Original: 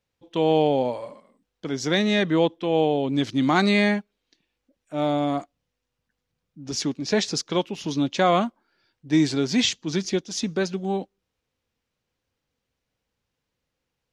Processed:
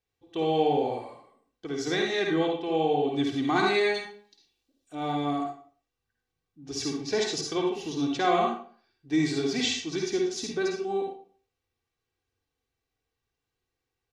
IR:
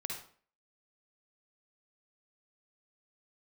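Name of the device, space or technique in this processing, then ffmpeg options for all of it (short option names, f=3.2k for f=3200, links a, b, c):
microphone above a desk: -filter_complex "[0:a]aecho=1:1:2.6:0.69[a];[1:a]atrim=start_sample=2205[b];[a][b]afir=irnorm=-1:irlink=0,asettb=1/sr,asplit=3[c][d][e];[c]atrim=end=3.944[f];[d]atrim=start=3.94:end=4.95,asetpts=PTS-STARTPTS,afade=t=in:d=0.004:c=qsin,afade=t=out:st=1.006:d=0.004:c=qsin,highshelf=f=2.8k:t=q:w=1.5:g=7.5[g];[e]atrim=start=4.946[h];[f][g]acrossfade=d=0.004:c1=hsin:c2=qsin[i];[i][h]acrossfade=d=0.004:c1=qsin:c2=hsin,volume=-5.5dB"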